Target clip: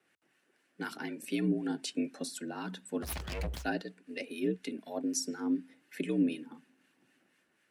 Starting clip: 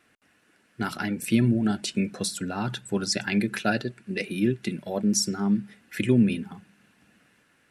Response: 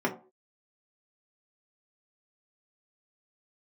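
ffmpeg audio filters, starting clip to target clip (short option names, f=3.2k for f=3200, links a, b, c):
-filter_complex "[0:a]asettb=1/sr,asplit=3[a][b][c];[a]atrim=end=3.024[d];[b]atrim=start=3.02:end=3.64,asetpts=PTS-STARTPTS,afade=t=in:d=0.004:c=qsin,afade=t=out:st=0.616:d=0.004:c=qsin,aeval=exprs='abs(val(0))':c=same[e];[c]atrim=start=3.636[f];[d][e]acrossfade=d=0.004:c1=hsin:c2=qsin[g];[g][f]acrossfade=d=0.004:c1=qsin:c2=hsin,acrossover=split=960[h][i];[h]aeval=exprs='val(0)*(1-0.5/2+0.5/2*cos(2*PI*4*n/s))':c=same[j];[i]aeval=exprs='val(0)*(1-0.5/2-0.5/2*cos(2*PI*4*n/s))':c=same[k];[j][k]amix=inputs=2:normalize=0,afreqshift=61,volume=-7dB"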